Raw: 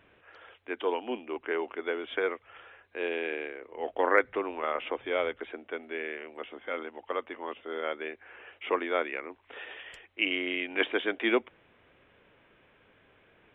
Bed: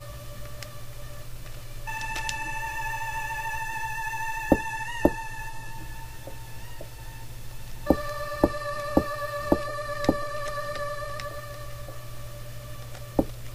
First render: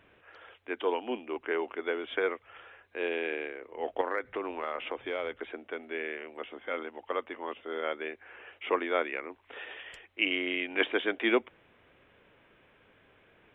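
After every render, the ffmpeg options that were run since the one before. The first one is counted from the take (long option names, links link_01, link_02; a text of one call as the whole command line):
ffmpeg -i in.wav -filter_complex "[0:a]asettb=1/sr,asplit=3[link_01][link_02][link_03];[link_01]atrim=end=4.014[link_04];[link_02]atrim=start=4.01:end=5.81,asetpts=PTS-STARTPTS,afade=type=in:duration=0.004:curve=qsin,afade=type=out:start_time=1.796:duration=0.004:curve=qsin,acompressor=threshold=-30dB:ratio=3:attack=3.2:release=140:knee=1:detection=peak[link_05];[link_03]atrim=start=5.806[link_06];[link_04][link_05]acrossfade=duration=0.004:curve1=hsin:curve2=qsin[link_07];[link_07][link_06]acrossfade=duration=0.004:curve1=qsin:curve2=hsin" out.wav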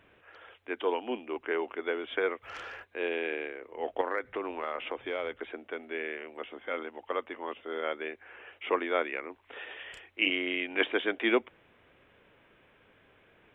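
ffmpeg -i in.wav -filter_complex "[0:a]asplit=3[link_01][link_02][link_03];[link_01]afade=type=out:start_time=2.42:duration=0.02[link_04];[link_02]aeval=exprs='0.0141*sin(PI/2*2.24*val(0)/0.0141)':channel_layout=same,afade=type=in:start_time=2.42:duration=0.02,afade=type=out:start_time=2.83:duration=0.02[link_05];[link_03]afade=type=in:start_time=2.83:duration=0.02[link_06];[link_04][link_05][link_06]amix=inputs=3:normalize=0,asettb=1/sr,asplit=3[link_07][link_08][link_09];[link_07]atrim=end=9.774[link_10];[link_08]atrim=start=9.77:end=10.3,asetpts=PTS-STARTPTS,afade=type=in:duration=0.004:curve=qsin,afade=type=out:start_time=0.526:duration=0.004:curve=qsin,asplit=2[link_11][link_12];[link_12]adelay=31,volume=-5dB[link_13];[link_11][link_13]amix=inputs=2:normalize=0,atrim=end_sample=23373[link_14];[link_09]atrim=start=10.296[link_15];[link_10][link_14]acrossfade=duration=0.004:curve1=hsin:curve2=qsin[link_16];[link_16][link_15]acrossfade=duration=0.004:curve1=qsin:curve2=hsin" out.wav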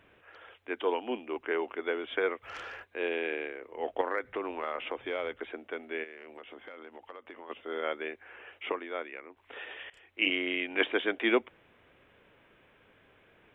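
ffmpeg -i in.wav -filter_complex "[0:a]asplit=3[link_01][link_02][link_03];[link_01]afade=type=out:start_time=6.03:duration=0.02[link_04];[link_02]acompressor=threshold=-42dB:ratio=10:attack=3.2:release=140:knee=1:detection=peak,afade=type=in:start_time=6.03:duration=0.02,afade=type=out:start_time=7.49:duration=0.02[link_05];[link_03]afade=type=in:start_time=7.49:duration=0.02[link_06];[link_04][link_05][link_06]amix=inputs=3:normalize=0,asplit=4[link_07][link_08][link_09][link_10];[link_07]atrim=end=8.722[link_11];[link_08]atrim=start=8.718:end=9.372,asetpts=PTS-STARTPTS,volume=-8dB[link_12];[link_09]atrim=start=9.368:end=9.9,asetpts=PTS-STARTPTS,afade=type=out:start_time=0.528:duration=0.004:curve=hsin:silence=0.0891251[link_13];[link_10]atrim=start=9.9,asetpts=PTS-STARTPTS,afade=type=in:duration=0.44:curve=qsin:silence=0.0891251[link_14];[link_11][link_12]acrossfade=duration=0.004:curve1=hsin:curve2=hsin[link_15];[link_13][link_14]concat=n=2:v=0:a=1[link_16];[link_15][link_16]acrossfade=duration=0.004:curve1=hsin:curve2=hsin" out.wav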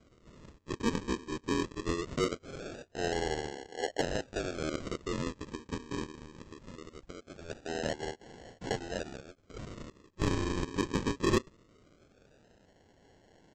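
ffmpeg -i in.wav -af "aresample=16000,acrusher=samples=18:mix=1:aa=0.000001:lfo=1:lforange=10.8:lforate=0.21,aresample=44100,asoftclip=type=tanh:threshold=-17.5dB" out.wav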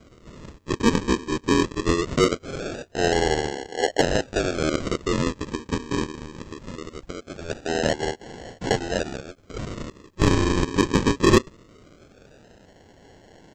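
ffmpeg -i in.wav -af "volume=11.5dB" out.wav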